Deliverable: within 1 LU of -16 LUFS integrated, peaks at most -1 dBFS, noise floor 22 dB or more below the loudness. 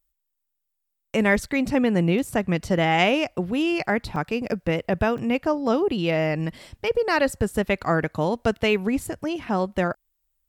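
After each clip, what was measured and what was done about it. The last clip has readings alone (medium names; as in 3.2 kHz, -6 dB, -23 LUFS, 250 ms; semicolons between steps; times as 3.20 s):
dropouts 2; longest dropout 2.7 ms; loudness -23.5 LUFS; peak level -6.0 dBFS; loudness target -16.0 LUFS
-> interpolate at 4.16/5.18 s, 2.7 ms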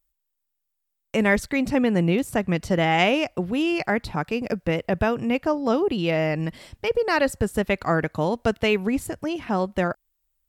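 dropouts 0; loudness -23.5 LUFS; peak level -6.0 dBFS; loudness target -16.0 LUFS
-> trim +7.5 dB; peak limiter -1 dBFS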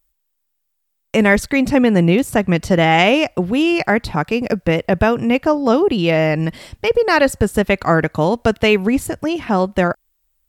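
loudness -16.5 LUFS; peak level -1.0 dBFS; noise floor -71 dBFS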